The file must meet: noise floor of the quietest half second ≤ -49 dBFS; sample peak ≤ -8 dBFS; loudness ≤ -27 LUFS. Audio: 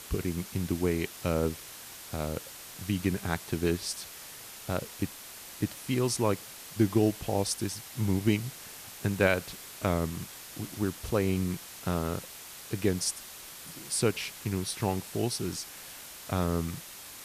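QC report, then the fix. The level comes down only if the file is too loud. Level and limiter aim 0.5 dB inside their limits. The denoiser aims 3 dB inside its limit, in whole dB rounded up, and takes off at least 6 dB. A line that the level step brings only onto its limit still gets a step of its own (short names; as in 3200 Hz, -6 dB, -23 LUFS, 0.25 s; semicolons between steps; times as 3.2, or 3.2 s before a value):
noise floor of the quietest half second -46 dBFS: fail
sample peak -11.5 dBFS: OK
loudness -31.5 LUFS: OK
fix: denoiser 6 dB, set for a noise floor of -46 dBFS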